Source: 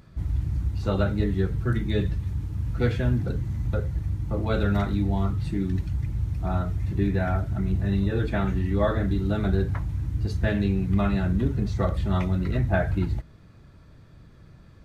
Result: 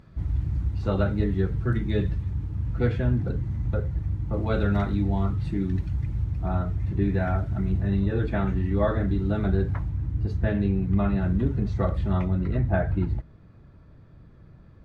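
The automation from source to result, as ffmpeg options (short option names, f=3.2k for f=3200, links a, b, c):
-af "asetnsamples=n=441:p=0,asendcmd='2.23 lowpass f 1900;4.33 lowpass f 3100;6.24 lowpass f 2100;7.09 lowpass f 3100;7.79 lowpass f 2200;9.89 lowpass f 1300;11.22 lowpass f 2100;12.13 lowpass f 1300',lowpass=f=2.8k:p=1"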